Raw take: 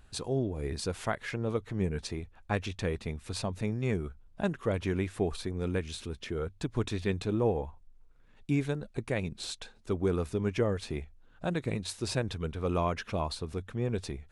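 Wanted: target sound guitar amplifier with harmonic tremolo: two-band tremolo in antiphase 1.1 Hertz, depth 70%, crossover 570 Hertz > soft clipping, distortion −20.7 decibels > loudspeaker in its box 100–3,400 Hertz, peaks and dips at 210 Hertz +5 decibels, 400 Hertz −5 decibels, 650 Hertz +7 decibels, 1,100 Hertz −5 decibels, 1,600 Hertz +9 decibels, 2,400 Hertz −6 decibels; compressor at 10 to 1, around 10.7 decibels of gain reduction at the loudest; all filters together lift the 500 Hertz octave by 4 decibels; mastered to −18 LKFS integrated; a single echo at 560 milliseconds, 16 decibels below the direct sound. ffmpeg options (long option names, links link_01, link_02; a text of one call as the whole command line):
ffmpeg -i in.wav -filter_complex "[0:a]equalizer=frequency=500:width_type=o:gain=5,acompressor=threshold=-31dB:ratio=10,aecho=1:1:560:0.158,acrossover=split=570[link_01][link_02];[link_01]aeval=exprs='val(0)*(1-0.7/2+0.7/2*cos(2*PI*1.1*n/s))':channel_layout=same[link_03];[link_02]aeval=exprs='val(0)*(1-0.7/2-0.7/2*cos(2*PI*1.1*n/s))':channel_layout=same[link_04];[link_03][link_04]amix=inputs=2:normalize=0,asoftclip=threshold=-27dB,highpass=100,equalizer=frequency=210:width_type=q:width=4:gain=5,equalizer=frequency=400:width_type=q:width=4:gain=-5,equalizer=frequency=650:width_type=q:width=4:gain=7,equalizer=frequency=1100:width_type=q:width=4:gain=-5,equalizer=frequency=1600:width_type=q:width=4:gain=9,equalizer=frequency=2400:width_type=q:width=4:gain=-6,lowpass=frequency=3400:width=0.5412,lowpass=frequency=3400:width=1.3066,volume=23.5dB" out.wav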